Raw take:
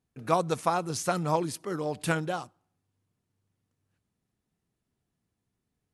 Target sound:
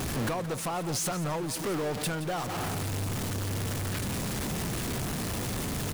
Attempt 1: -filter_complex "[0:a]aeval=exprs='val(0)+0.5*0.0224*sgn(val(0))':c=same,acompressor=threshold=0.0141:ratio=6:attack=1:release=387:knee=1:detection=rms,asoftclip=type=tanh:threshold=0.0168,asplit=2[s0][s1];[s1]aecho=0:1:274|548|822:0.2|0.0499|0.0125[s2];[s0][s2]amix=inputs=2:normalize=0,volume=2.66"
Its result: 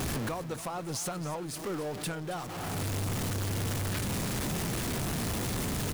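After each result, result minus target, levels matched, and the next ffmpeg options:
echo 102 ms late; compression: peak gain reduction +6.5 dB
-filter_complex "[0:a]aeval=exprs='val(0)+0.5*0.0224*sgn(val(0))':c=same,acompressor=threshold=0.0141:ratio=6:attack=1:release=387:knee=1:detection=rms,asoftclip=type=tanh:threshold=0.0168,asplit=2[s0][s1];[s1]aecho=0:1:172|344|516:0.2|0.0499|0.0125[s2];[s0][s2]amix=inputs=2:normalize=0,volume=2.66"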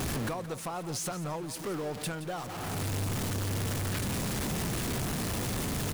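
compression: peak gain reduction +6.5 dB
-filter_complex "[0:a]aeval=exprs='val(0)+0.5*0.0224*sgn(val(0))':c=same,acompressor=threshold=0.0335:ratio=6:attack=1:release=387:knee=1:detection=rms,asoftclip=type=tanh:threshold=0.0168,asplit=2[s0][s1];[s1]aecho=0:1:172|344|516:0.2|0.0499|0.0125[s2];[s0][s2]amix=inputs=2:normalize=0,volume=2.66"

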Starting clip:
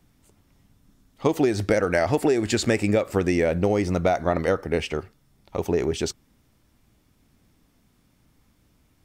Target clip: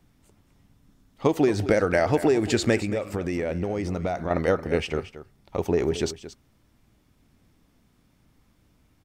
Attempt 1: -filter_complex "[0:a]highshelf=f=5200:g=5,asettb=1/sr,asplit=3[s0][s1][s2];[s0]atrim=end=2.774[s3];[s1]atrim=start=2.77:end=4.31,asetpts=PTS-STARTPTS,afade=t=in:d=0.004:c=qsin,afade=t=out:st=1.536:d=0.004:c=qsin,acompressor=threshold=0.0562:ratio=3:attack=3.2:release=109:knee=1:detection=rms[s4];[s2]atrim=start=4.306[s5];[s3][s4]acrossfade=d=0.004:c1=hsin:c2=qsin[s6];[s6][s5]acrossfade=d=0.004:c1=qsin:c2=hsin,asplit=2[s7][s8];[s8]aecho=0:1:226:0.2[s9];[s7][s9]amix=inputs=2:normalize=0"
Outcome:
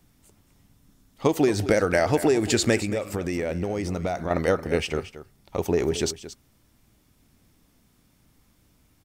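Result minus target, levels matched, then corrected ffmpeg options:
8 kHz band +6.0 dB
-filter_complex "[0:a]highshelf=f=5200:g=-4.5,asettb=1/sr,asplit=3[s0][s1][s2];[s0]atrim=end=2.774[s3];[s1]atrim=start=2.77:end=4.31,asetpts=PTS-STARTPTS,afade=t=in:d=0.004:c=qsin,afade=t=out:st=1.536:d=0.004:c=qsin,acompressor=threshold=0.0562:ratio=3:attack=3.2:release=109:knee=1:detection=rms[s4];[s2]atrim=start=4.306[s5];[s3][s4]acrossfade=d=0.004:c1=hsin:c2=qsin[s6];[s6][s5]acrossfade=d=0.004:c1=qsin:c2=hsin,asplit=2[s7][s8];[s8]aecho=0:1:226:0.2[s9];[s7][s9]amix=inputs=2:normalize=0"

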